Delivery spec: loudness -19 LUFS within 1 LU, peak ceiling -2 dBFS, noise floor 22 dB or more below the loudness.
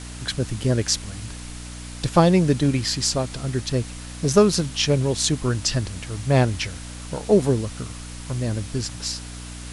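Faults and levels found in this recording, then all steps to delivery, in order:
hum 60 Hz; harmonics up to 300 Hz; hum level -34 dBFS; noise floor -36 dBFS; noise floor target -45 dBFS; loudness -22.5 LUFS; peak -2.5 dBFS; loudness target -19.0 LUFS
-> de-hum 60 Hz, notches 5; denoiser 9 dB, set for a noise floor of -36 dBFS; gain +3.5 dB; limiter -2 dBFS

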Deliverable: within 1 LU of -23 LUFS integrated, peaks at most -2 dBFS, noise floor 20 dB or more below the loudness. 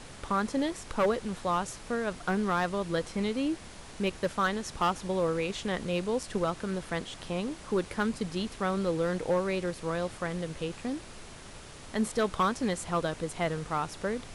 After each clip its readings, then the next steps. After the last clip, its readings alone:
clipped 0.5%; flat tops at -20.5 dBFS; noise floor -47 dBFS; noise floor target -52 dBFS; loudness -31.5 LUFS; peak -20.5 dBFS; loudness target -23.0 LUFS
-> clip repair -20.5 dBFS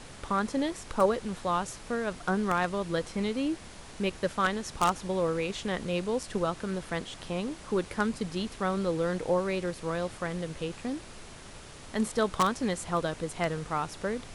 clipped 0.0%; noise floor -47 dBFS; noise floor target -51 dBFS
-> noise print and reduce 6 dB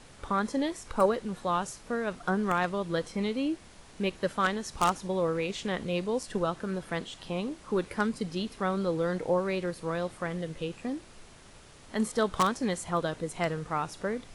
noise floor -52 dBFS; loudness -31.0 LUFS; peak -11.5 dBFS; loudness target -23.0 LUFS
-> gain +8 dB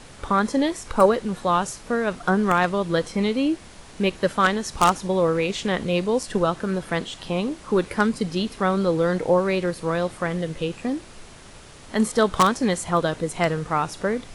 loudness -23.0 LUFS; peak -3.5 dBFS; noise floor -44 dBFS

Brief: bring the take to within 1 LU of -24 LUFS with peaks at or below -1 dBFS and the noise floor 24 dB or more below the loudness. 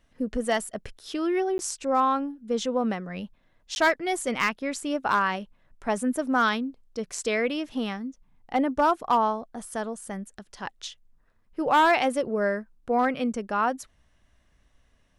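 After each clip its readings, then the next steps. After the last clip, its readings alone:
clipped 0.3%; flat tops at -14.5 dBFS; dropouts 2; longest dropout 11 ms; loudness -26.5 LUFS; peak -14.5 dBFS; loudness target -24.0 LUFS
-> clip repair -14.5 dBFS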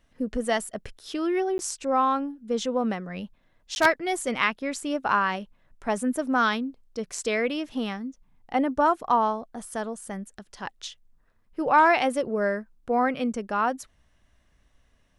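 clipped 0.0%; dropouts 2; longest dropout 11 ms
-> interpolate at 1.58/3.75, 11 ms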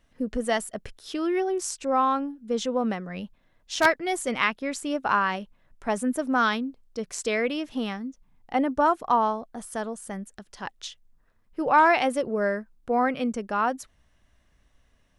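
dropouts 0; loudness -26.0 LUFS; peak -5.5 dBFS; loudness target -24.0 LUFS
-> gain +2 dB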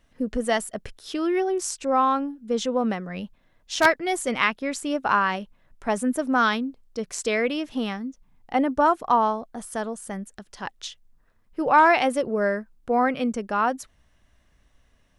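loudness -24.0 LUFS; peak -3.5 dBFS; noise floor -63 dBFS

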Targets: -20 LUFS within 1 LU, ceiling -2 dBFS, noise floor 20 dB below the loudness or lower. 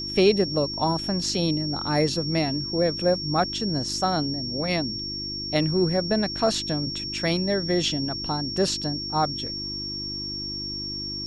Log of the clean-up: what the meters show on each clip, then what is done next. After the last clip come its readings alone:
hum 50 Hz; harmonics up to 350 Hz; hum level -36 dBFS; steady tone 5500 Hz; tone level -30 dBFS; loudness -25.0 LUFS; peak -6.5 dBFS; loudness target -20.0 LUFS
-> de-hum 50 Hz, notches 7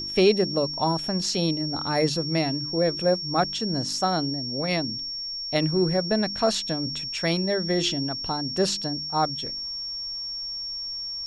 hum none; steady tone 5500 Hz; tone level -30 dBFS
-> notch 5500 Hz, Q 30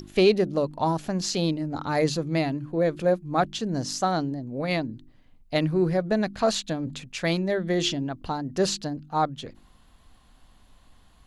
steady tone none; loudness -26.5 LUFS; peak -7.5 dBFS; loudness target -20.0 LUFS
-> gain +6.5 dB; limiter -2 dBFS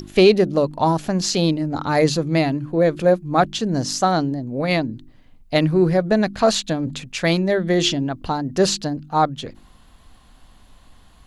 loudness -20.0 LUFS; peak -2.0 dBFS; noise floor -51 dBFS

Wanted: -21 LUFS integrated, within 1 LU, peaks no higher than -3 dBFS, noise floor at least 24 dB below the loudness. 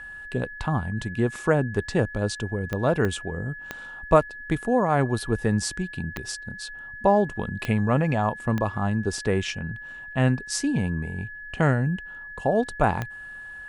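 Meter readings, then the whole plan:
clicks 7; steady tone 1700 Hz; tone level -37 dBFS; loudness -25.5 LUFS; peak -5.0 dBFS; loudness target -21.0 LUFS
-> de-click; notch 1700 Hz, Q 30; gain +4.5 dB; limiter -3 dBFS

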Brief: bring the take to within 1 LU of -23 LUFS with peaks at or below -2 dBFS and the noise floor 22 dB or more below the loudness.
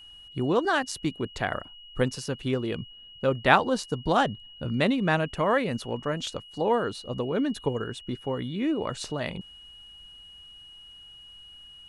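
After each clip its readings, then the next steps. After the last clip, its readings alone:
steady tone 2900 Hz; tone level -46 dBFS; loudness -28.0 LUFS; peak -4.0 dBFS; loudness target -23.0 LUFS
-> notch 2900 Hz, Q 30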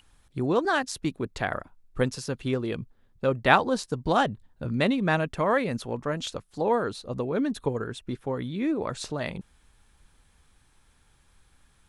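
steady tone none; loudness -28.0 LUFS; peak -4.0 dBFS; loudness target -23.0 LUFS
-> gain +5 dB; limiter -2 dBFS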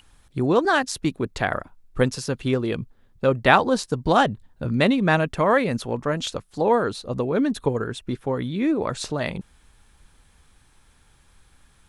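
loudness -23.0 LUFS; peak -2.0 dBFS; noise floor -58 dBFS

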